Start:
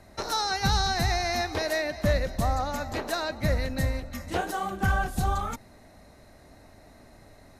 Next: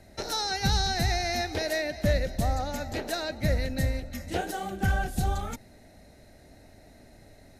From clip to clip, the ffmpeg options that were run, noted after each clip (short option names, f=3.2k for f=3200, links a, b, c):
-af "equalizer=f=1.1k:t=o:w=0.48:g=-13.5"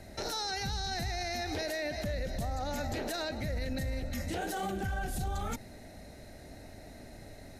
-af "acompressor=threshold=-30dB:ratio=6,alimiter=level_in=7dB:limit=-24dB:level=0:latency=1:release=21,volume=-7dB,volume=4dB"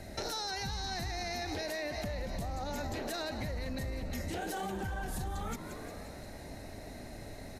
-filter_complex "[0:a]asplit=8[a][b][c][d][e][f][g][h];[b]adelay=176,afreqshift=130,volume=-14.5dB[i];[c]adelay=352,afreqshift=260,volume=-18.7dB[j];[d]adelay=528,afreqshift=390,volume=-22.8dB[k];[e]adelay=704,afreqshift=520,volume=-27dB[l];[f]adelay=880,afreqshift=650,volume=-31.1dB[m];[g]adelay=1056,afreqshift=780,volume=-35.3dB[n];[h]adelay=1232,afreqshift=910,volume=-39.4dB[o];[a][i][j][k][l][m][n][o]amix=inputs=8:normalize=0,acompressor=threshold=-37dB:ratio=6,volume=3dB"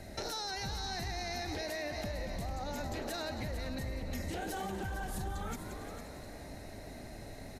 -af "aecho=1:1:453:0.316,volume=-1.5dB"